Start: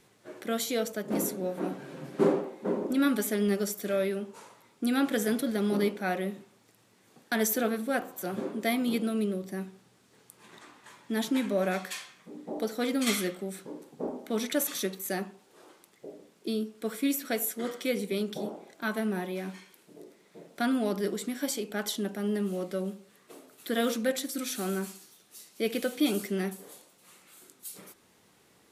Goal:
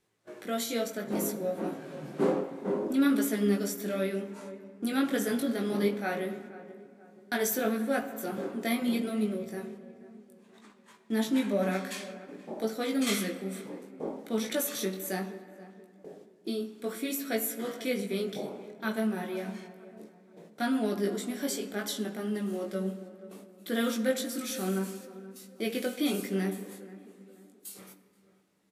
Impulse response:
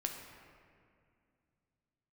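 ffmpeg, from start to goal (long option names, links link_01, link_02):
-filter_complex "[0:a]flanger=delay=18:depth=3.3:speed=0.63,agate=range=-12dB:threshold=-53dB:ratio=16:detection=peak,asplit=2[link_01][link_02];[link_02]adelay=479,lowpass=frequency=1500:poles=1,volume=-17dB,asplit=2[link_03][link_04];[link_04]adelay=479,lowpass=frequency=1500:poles=1,volume=0.46,asplit=2[link_05][link_06];[link_06]adelay=479,lowpass=frequency=1500:poles=1,volume=0.46,asplit=2[link_07][link_08];[link_08]adelay=479,lowpass=frequency=1500:poles=1,volume=0.46[link_09];[link_01][link_03][link_05][link_07][link_09]amix=inputs=5:normalize=0,asplit=2[link_10][link_11];[1:a]atrim=start_sample=2205[link_12];[link_11][link_12]afir=irnorm=-1:irlink=0,volume=-3.5dB[link_13];[link_10][link_13]amix=inputs=2:normalize=0,volume=-2.5dB"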